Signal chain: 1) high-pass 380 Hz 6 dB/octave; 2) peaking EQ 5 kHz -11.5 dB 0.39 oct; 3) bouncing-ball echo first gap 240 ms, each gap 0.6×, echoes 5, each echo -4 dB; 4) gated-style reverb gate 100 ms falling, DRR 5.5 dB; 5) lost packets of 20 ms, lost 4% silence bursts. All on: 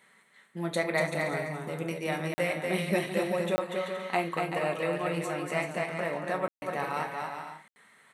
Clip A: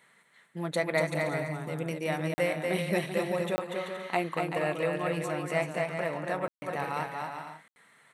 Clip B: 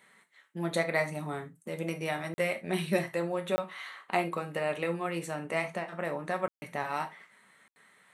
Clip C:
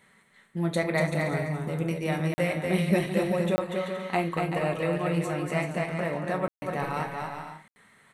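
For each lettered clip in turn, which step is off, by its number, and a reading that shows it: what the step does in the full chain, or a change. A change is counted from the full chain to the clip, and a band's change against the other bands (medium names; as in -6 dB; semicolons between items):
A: 4, 125 Hz band +2.0 dB; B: 3, crest factor change +2.0 dB; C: 1, 125 Hz band +7.5 dB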